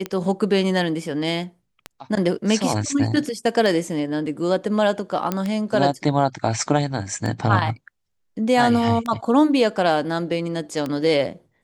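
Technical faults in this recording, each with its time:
tick 33 1/3 rpm -13 dBFS
5.32 pop -9 dBFS

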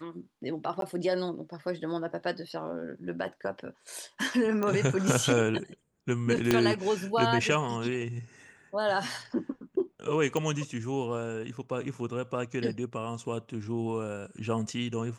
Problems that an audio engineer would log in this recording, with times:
0.81–0.82 gap 12 ms
4.63 pop -18 dBFS
6.51 pop -9 dBFS
10.37 pop -18 dBFS

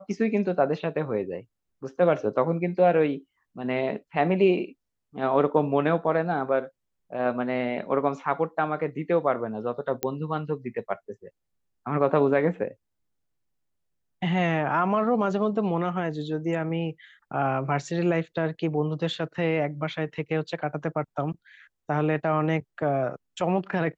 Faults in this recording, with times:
10.03 pop -12 dBFS

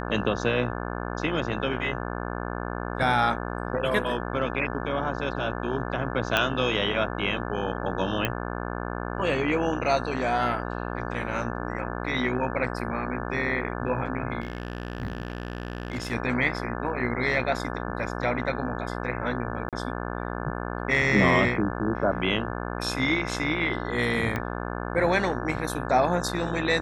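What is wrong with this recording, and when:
buzz 60 Hz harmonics 29 -32 dBFS
6.37 pop -8 dBFS
8.25 pop -10 dBFS
14.4–16.13 clipped -26 dBFS
19.69–19.73 gap 37 ms
24.36 pop -15 dBFS

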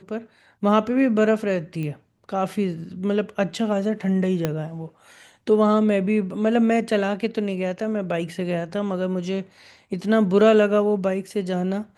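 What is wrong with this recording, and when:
1.83 pop -20 dBFS
4.45 pop -9 dBFS

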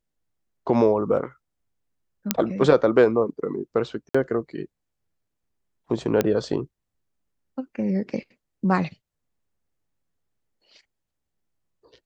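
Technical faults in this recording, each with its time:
2.31 pop -1 dBFS
4.09–4.14 gap 55 ms
6.21 pop -7 dBFS

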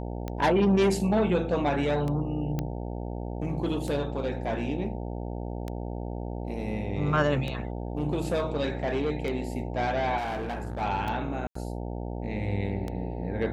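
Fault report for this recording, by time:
buzz 60 Hz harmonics 15 -34 dBFS
tick 33 1/3 rpm -20 dBFS
2.59 pop -17 dBFS
10.17–10.82 clipped -29 dBFS
11.47–11.55 gap 84 ms

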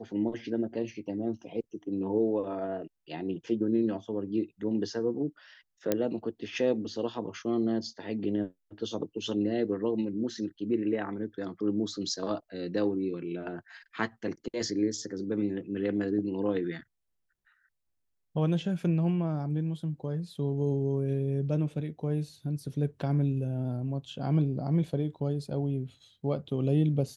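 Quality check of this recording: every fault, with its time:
5.92 pop -12 dBFS

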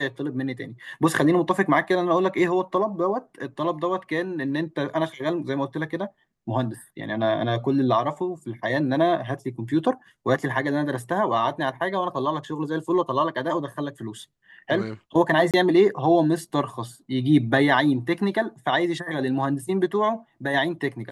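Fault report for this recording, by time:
15.51–15.54 gap 27 ms

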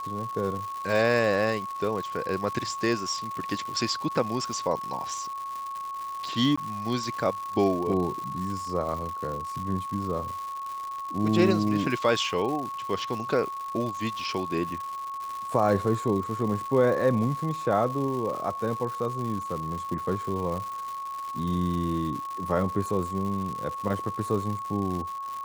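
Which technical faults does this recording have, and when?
crackle 240/s -33 dBFS
tone 1100 Hz -32 dBFS
6.56–6.58 gap 15 ms

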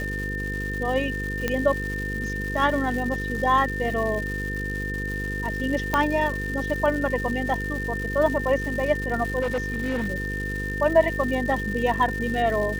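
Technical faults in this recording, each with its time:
buzz 50 Hz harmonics 10 -31 dBFS
crackle 350/s -31 dBFS
tone 1800 Hz -30 dBFS
1.48 pop -10 dBFS
5.94 pop -8 dBFS
9.41–10.08 clipped -21.5 dBFS

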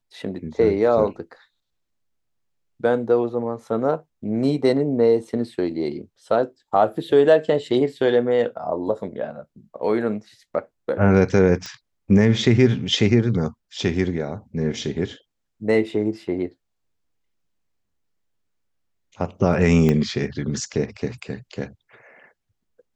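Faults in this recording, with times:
11.66 pop -17 dBFS
19.89 pop -9 dBFS

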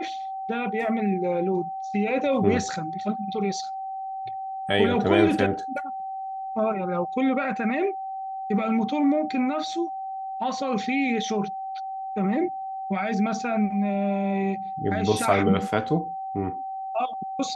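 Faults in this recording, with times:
tone 770 Hz -30 dBFS

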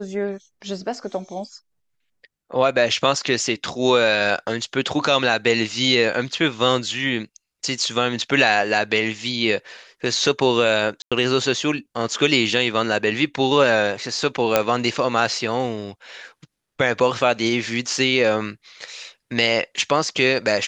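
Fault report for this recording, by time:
11.02–11.12 gap 96 ms
14.56 pop -1 dBFS

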